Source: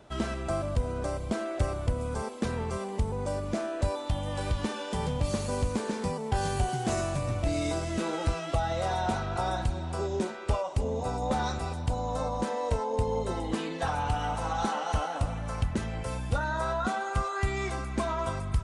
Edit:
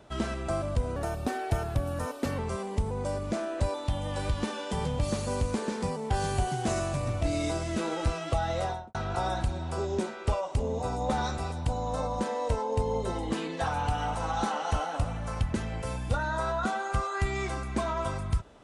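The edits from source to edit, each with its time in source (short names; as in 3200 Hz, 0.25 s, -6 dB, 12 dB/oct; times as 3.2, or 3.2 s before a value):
0.96–2.6 speed 115%
8.8–9.16 studio fade out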